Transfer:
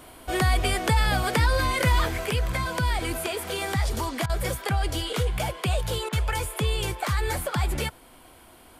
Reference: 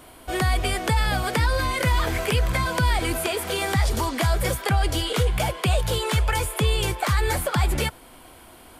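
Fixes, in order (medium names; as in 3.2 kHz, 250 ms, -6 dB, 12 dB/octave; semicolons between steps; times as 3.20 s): interpolate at 4.26/6.09 s, 34 ms; gain correction +4 dB, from 2.07 s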